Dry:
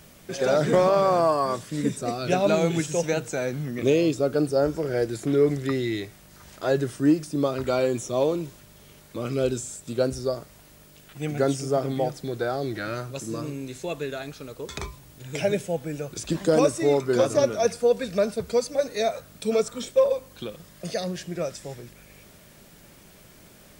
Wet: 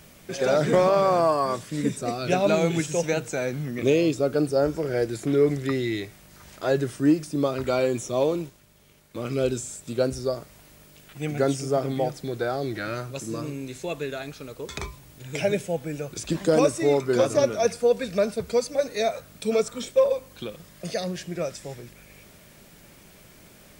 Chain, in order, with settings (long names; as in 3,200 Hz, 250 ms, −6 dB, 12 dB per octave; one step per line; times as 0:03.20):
0:08.42–0:09.31: mu-law and A-law mismatch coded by A
parametric band 2,300 Hz +2.5 dB 0.42 octaves